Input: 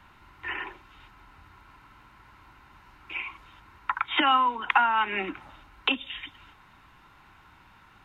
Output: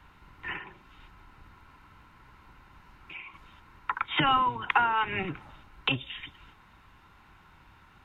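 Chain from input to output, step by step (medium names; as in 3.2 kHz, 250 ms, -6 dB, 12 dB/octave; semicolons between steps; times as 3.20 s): octave divider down 1 oct, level +2 dB; 0.57–3.34 s: compression 2:1, threshold -42 dBFS, peak gain reduction 7.5 dB; trim -2.5 dB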